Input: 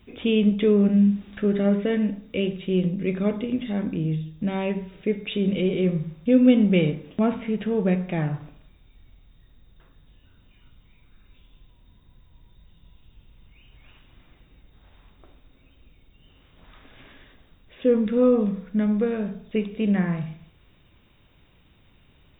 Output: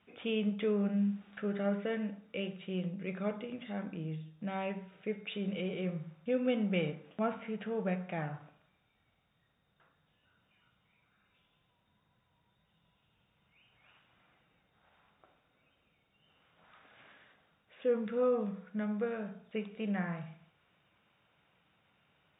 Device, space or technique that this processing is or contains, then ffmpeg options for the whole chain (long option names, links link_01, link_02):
kitchen radio: -af "highpass=190,equalizer=frequency=260:width_type=q:width=4:gain=-9,equalizer=frequency=370:width_type=q:width=4:gain=-7,equalizer=frequency=760:width_type=q:width=4:gain=4,equalizer=frequency=1400:width_type=q:width=4:gain=6,lowpass=frequency=3400:width=0.5412,lowpass=frequency=3400:width=1.3066,volume=-8.5dB"